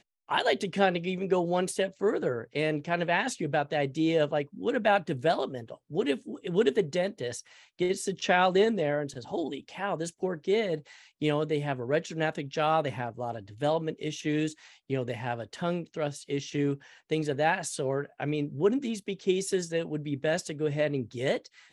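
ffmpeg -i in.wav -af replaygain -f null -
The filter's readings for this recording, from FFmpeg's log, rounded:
track_gain = +8.6 dB
track_peak = 0.220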